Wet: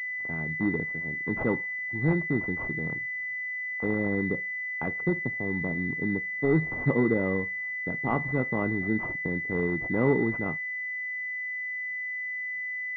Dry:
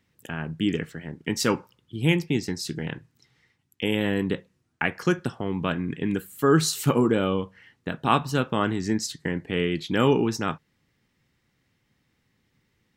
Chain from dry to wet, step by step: 5.01–6.72 s: median filter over 41 samples; class-D stage that switches slowly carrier 2 kHz; trim -3 dB

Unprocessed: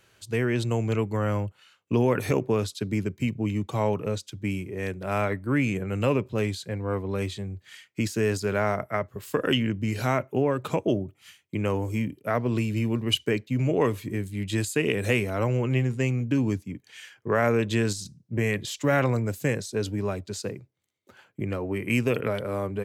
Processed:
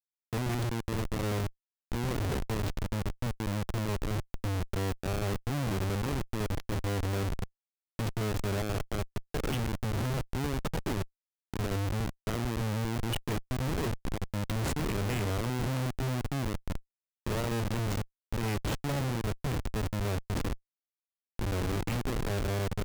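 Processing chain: in parallel at +1 dB: compressor with a negative ratio -30 dBFS, ratio -1; on the sum: Schmitt trigger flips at -19.5 dBFS; trim -7.5 dB

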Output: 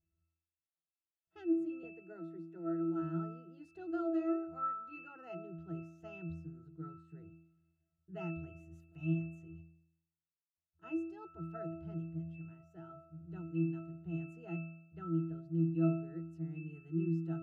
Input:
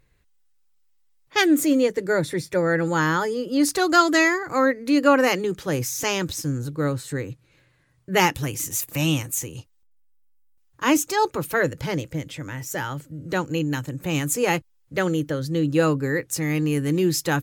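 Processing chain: 1.83–3.02 s: steep high-pass 190 Hz 72 dB/octave; pitch-class resonator E, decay 0.74 s

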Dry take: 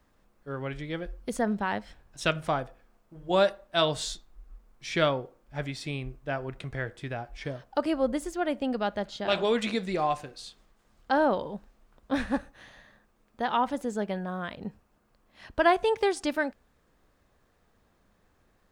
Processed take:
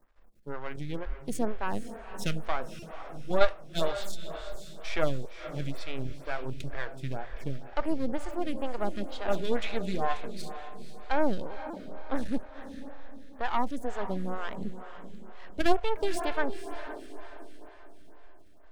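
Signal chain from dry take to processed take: partial rectifier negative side -12 dB; in parallel at -1 dB: level held to a coarse grid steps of 23 dB; on the sum: bass shelf 61 Hz +10 dB; on a send: echo that smears into a reverb 499 ms, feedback 44%, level -10.5 dB; on the sum: buffer glitch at 2.79/11.70 s, samples 128, times 10; lamp-driven phase shifter 2.1 Hz

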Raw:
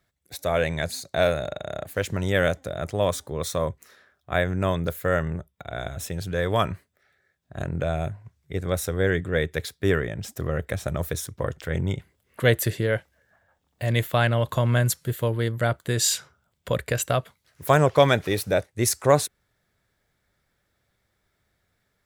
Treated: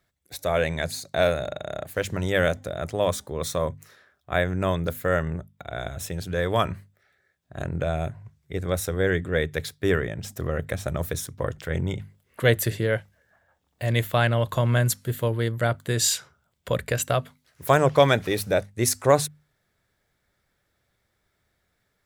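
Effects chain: hum notches 50/100/150/200/250 Hz

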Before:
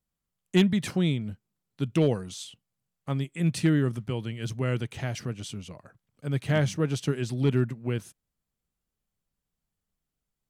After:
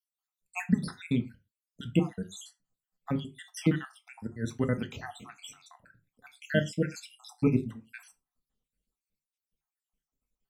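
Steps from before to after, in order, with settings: random holes in the spectrogram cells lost 73%; dynamic bell 200 Hz, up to +6 dB, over -43 dBFS, Q 2.3; reverberation, pre-delay 4 ms, DRR 6 dB

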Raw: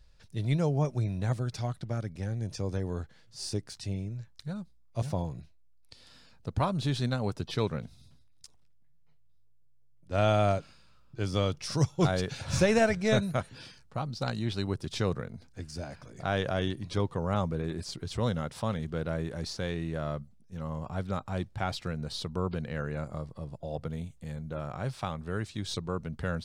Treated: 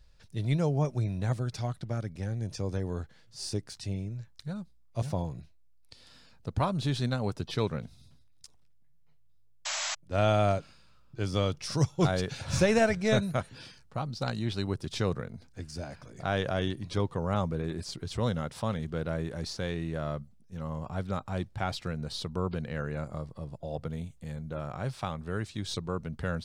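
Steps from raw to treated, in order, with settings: painted sound noise, 9.65–9.95 s, 570–7900 Hz -33 dBFS

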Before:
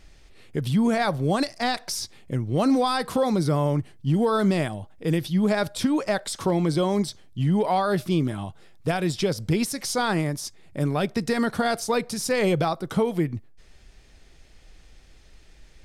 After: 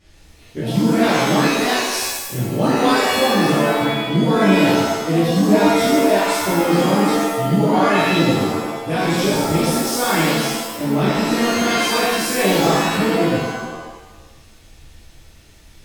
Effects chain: pitch-shifted reverb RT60 1 s, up +7 st, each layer -2 dB, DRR -11.5 dB; trim -7 dB

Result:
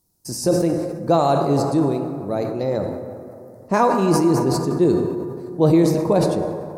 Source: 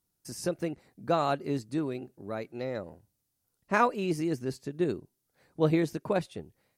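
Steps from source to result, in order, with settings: high-order bell 2.1 kHz -10 dB; plate-style reverb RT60 3.1 s, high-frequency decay 0.4×, DRR 6 dB; in parallel at +1.5 dB: peak limiter -20.5 dBFS, peak gain reduction 7.5 dB; on the sum: decay stretcher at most 41 dB/s; trim +4.5 dB

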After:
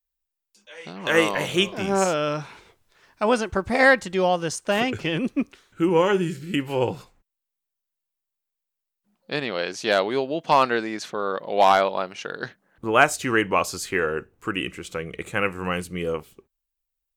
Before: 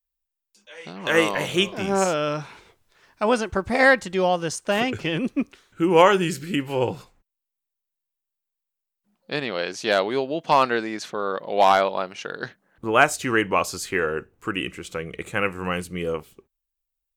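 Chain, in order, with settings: 5.89–6.54 s: harmonic-percussive split percussive -18 dB

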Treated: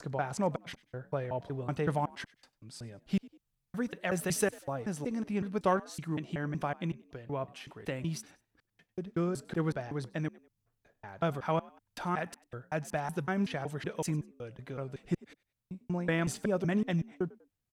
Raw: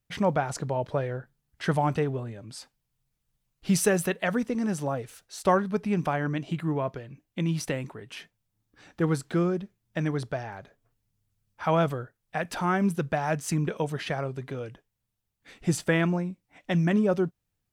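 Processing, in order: slices played last to first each 187 ms, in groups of 4; Chebyshev shaper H 3 -26 dB, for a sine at -10 dBFS; frequency-shifting echo 97 ms, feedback 36%, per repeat +58 Hz, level -22.5 dB; trim -5 dB

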